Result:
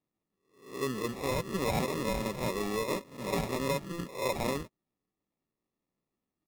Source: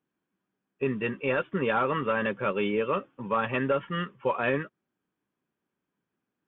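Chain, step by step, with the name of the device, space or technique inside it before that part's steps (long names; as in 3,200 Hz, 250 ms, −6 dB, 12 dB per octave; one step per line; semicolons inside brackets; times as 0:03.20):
peak hold with a rise ahead of every peak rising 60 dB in 0.50 s
crushed at another speed (tape speed factor 0.8×; decimation without filtering 36×; tape speed factor 1.25×)
level −6 dB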